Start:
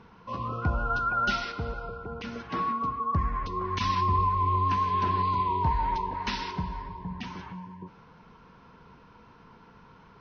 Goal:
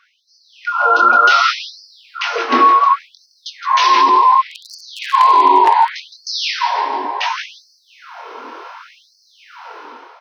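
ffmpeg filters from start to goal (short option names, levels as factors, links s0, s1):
-filter_complex "[0:a]acrossover=split=120|1500[s0][s1][s2];[s0]asoftclip=type=tanh:threshold=0.015[s3];[s3][s1][s2]amix=inputs=3:normalize=0,dynaudnorm=f=170:g=7:m=5.62,asplit=2[s4][s5];[s5]asplit=4[s6][s7][s8][s9];[s6]adelay=165,afreqshift=-110,volume=0.355[s10];[s7]adelay=330,afreqshift=-220,volume=0.141[s11];[s8]adelay=495,afreqshift=-330,volume=0.0569[s12];[s9]adelay=660,afreqshift=-440,volume=0.0226[s13];[s10][s11][s12][s13]amix=inputs=4:normalize=0[s14];[s4][s14]amix=inputs=2:normalize=0,flanger=delay=18.5:depth=7:speed=0.54,asettb=1/sr,asplit=3[s15][s16][s17];[s15]atrim=end=4.514[s18];[s16]atrim=start=4.51:end=5.9,asetpts=PTS-STARTPTS,afade=t=in:d=0.004:c=qsin,afade=t=out:st=1.386:d=0.004:c=qsin,aeval=exprs='0.398*(abs(mod(val(0)/0.398+3,4)-2)-1)':c=same[s19];[s17]atrim=start=5.896[s20];[s18][s19]acrossfade=d=0.004:c1=hsin:c2=qsin[s21];[s21][s20]acrossfade=d=0.004:c1=qsin:c2=hsin,alimiter=level_in=3.76:limit=0.891:release=50:level=0:latency=1,afftfilt=real='re*gte(b*sr/1024,240*pow(4300/240,0.5+0.5*sin(2*PI*0.68*pts/sr)))':imag='im*gte(b*sr/1024,240*pow(4300/240,0.5+0.5*sin(2*PI*0.68*pts/sr)))':win_size=1024:overlap=0.75,volume=0.891"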